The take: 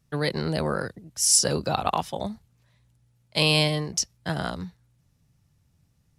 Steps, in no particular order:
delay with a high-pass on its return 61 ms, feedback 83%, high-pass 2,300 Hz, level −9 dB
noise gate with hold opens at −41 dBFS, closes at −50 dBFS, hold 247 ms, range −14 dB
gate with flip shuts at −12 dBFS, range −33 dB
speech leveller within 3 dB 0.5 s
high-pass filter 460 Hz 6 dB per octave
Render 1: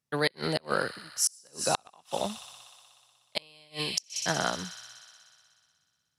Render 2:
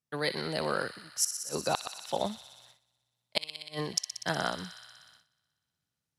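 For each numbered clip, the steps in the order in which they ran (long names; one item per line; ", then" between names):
high-pass filter, then noise gate with hold, then speech leveller, then delay with a high-pass on its return, then gate with flip
high-pass filter, then gate with flip, then delay with a high-pass on its return, then noise gate with hold, then speech leveller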